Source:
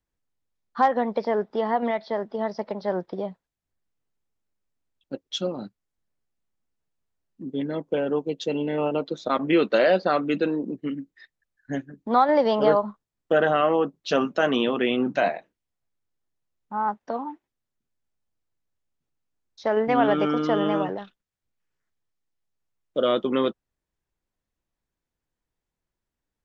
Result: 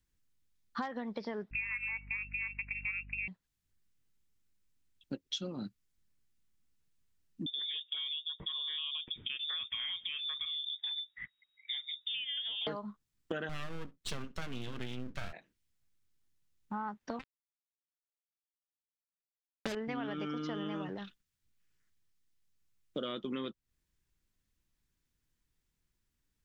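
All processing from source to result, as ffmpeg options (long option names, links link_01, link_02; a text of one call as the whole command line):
ffmpeg -i in.wav -filter_complex "[0:a]asettb=1/sr,asplit=3[link_01][link_02][link_03];[link_01]atrim=end=1.514[link_04];[link_02]atrim=start=1.51:end=3.28,asetpts=PTS-STARTPTS,afade=type=in:duration=0.004:curve=qsin,afade=type=out:start_time=1.766:duration=0.004:curve=qsin,lowpass=frequency=2500:width_type=q:width=0.5098,lowpass=frequency=2500:width_type=q:width=0.6013,lowpass=frequency=2500:width_type=q:width=0.9,lowpass=frequency=2500:width_type=q:width=2.563,afreqshift=-2900,aeval=exprs='val(0)+0.00631*(sin(2*PI*50*n/s)+sin(2*PI*2*50*n/s)/2+sin(2*PI*3*50*n/s)/3+sin(2*PI*4*50*n/s)/4+sin(2*PI*5*50*n/s)/5)':channel_layout=same[link_05];[link_03]atrim=start=3.276[link_06];[link_04][link_05]acrossfade=duration=0.004:curve1=hsin:curve2=qsin[link_07];[link_07][link_06]acrossfade=duration=0.004:curve1=qsin:curve2=hsin,asettb=1/sr,asplit=3[link_08][link_09][link_10];[link_08]atrim=end=7.464[link_11];[link_09]atrim=start=7.46:end=12.67,asetpts=PTS-STARTPTS,afade=type=in:duration=0.004:curve=qsin,afade=type=out:start_time=5.206:duration=0.004:curve=qsin,highshelf=frequency=3000:gain=11.5,acompressor=threshold=-37dB:ratio=2.5:attack=3.2:release=140:knee=1:detection=peak,lowpass=frequency=3200:width_type=q:width=0.5098,lowpass=frequency=3200:width_type=q:width=0.6013,lowpass=frequency=3200:width_type=q:width=0.9,lowpass=frequency=3200:width_type=q:width=2.563,afreqshift=-3800[link_12];[link_10]atrim=start=12.666[link_13];[link_11][link_12]acrossfade=duration=0.004:curve1=hsin:curve2=qsin[link_14];[link_14][link_13]acrossfade=duration=0.004:curve1=qsin:curve2=hsin,asettb=1/sr,asplit=3[link_15][link_16][link_17];[link_15]atrim=end=13.494[link_18];[link_16]atrim=start=13.49:end=15.33,asetpts=PTS-STARTPTS,afade=type=in:duration=0.004:curve=qsin,afade=type=out:start_time=1.836:duration=0.004:curve=qsin,aeval=exprs='max(val(0),0)':channel_layout=same,aecho=1:1:66:0.0631,atrim=end_sample=81144[link_19];[link_17]atrim=start=15.326[link_20];[link_18][link_19]acrossfade=duration=0.004:curve1=hsin:curve2=qsin[link_21];[link_21][link_20]acrossfade=duration=0.004:curve1=qsin:curve2=hsin,asettb=1/sr,asplit=3[link_22][link_23][link_24];[link_22]atrim=end=17.194[link_25];[link_23]atrim=start=17.19:end=19.75,asetpts=PTS-STARTPTS,afade=type=in:duration=0.004:curve=qsin,afade=type=out:start_time=2.556:duration=0.004:curve=qsin,lowpass=frequency=1300:poles=1,aecho=1:1:5.1:0.76,atrim=end_sample=112896,acrusher=bits=3:mix=0:aa=0.5[link_26];[link_24]atrim=start=19.746[link_27];[link_25][link_26]acrossfade=duration=0.004:curve1=hsin:curve2=qsin[link_28];[link_28][link_27]acrossfade=duration=0.004:curve1=qsin:curve2=hsin,equalizer=frequency=660:width=0.72:gain=-13,acompressor=threshold=-41dB:ratio=8,volume=5.5dB" out.wav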